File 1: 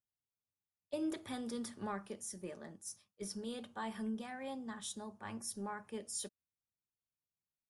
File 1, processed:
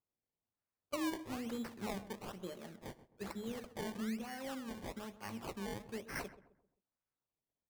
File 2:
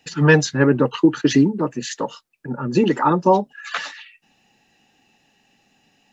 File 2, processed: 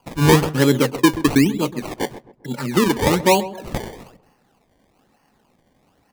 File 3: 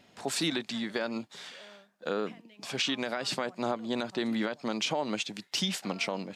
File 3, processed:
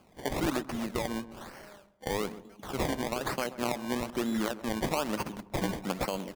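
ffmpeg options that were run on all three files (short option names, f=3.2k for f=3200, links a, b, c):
-filter_complex "[0:a]aresample=22050,aresample=44100,acrusher=samples=23:mix=1:aa=0.000001:lfo=1:lforange=23:lforate=1.1,asplit=2[a][b];[b]adelay=131,lowpass=f=1.2k:p=1,volume=-14dB,asplit=2[c][d];[d]adelay=131,lowpass=f=1.2k:p=1,volume=0.39,asplit=2[e][f];[f]adelay=131,lowpass=f=1.2k:p=1,volume=0.39,asplit=2[g][h];[h]adelay=131,lowpass=f=1.2k:p=1,volume=0.39[i];[a][c][e][g][i]amix=inputs=5:normalize=0"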